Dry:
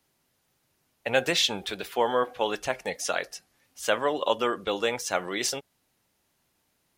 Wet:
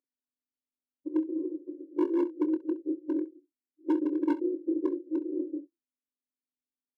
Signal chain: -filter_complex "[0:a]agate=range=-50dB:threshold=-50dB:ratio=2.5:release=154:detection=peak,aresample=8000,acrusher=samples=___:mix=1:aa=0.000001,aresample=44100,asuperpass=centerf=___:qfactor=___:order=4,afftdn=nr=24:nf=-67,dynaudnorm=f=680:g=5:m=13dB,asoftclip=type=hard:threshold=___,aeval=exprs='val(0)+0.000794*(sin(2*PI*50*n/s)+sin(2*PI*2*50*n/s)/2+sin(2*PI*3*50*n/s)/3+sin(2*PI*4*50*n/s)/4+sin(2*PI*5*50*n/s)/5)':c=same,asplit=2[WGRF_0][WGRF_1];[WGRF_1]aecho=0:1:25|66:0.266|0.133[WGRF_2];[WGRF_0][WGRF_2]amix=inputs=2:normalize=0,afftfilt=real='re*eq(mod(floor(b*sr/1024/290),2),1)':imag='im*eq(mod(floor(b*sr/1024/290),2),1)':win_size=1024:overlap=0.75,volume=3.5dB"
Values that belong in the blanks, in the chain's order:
19, 340, 3.5, -23dB